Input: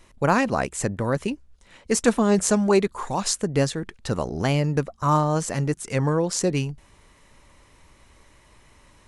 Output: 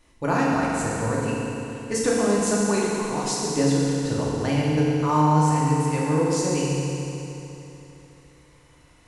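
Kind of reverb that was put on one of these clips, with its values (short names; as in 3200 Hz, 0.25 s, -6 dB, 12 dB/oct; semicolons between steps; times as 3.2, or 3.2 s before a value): FDN reverb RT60 3.2 s, high-frequency decay 0.95×, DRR -6 dB; gain -7.5 dB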